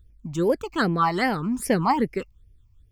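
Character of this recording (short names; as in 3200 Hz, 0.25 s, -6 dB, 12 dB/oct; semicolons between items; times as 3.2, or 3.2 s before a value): phasing stages 8, 2.5 Hz, lowest notch 450–1200 Hz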